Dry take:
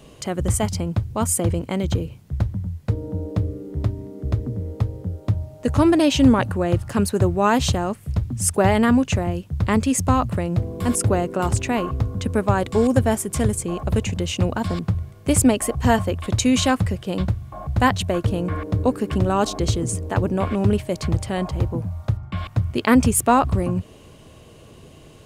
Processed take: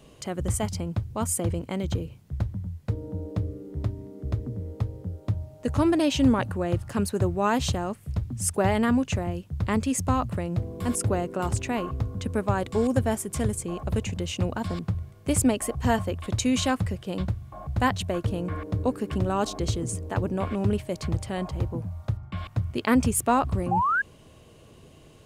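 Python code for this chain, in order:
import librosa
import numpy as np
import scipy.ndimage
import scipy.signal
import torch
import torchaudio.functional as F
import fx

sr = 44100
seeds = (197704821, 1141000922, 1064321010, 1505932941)

y = fx.spec_paint(x, sr, seeds[0], shape='rise', start_s=23.71, length_s=0.31, low_hz=750.0, high_hz=1700.0, level_db=-17.0)
y = y * librosa.db_to_amplitude(-6.0)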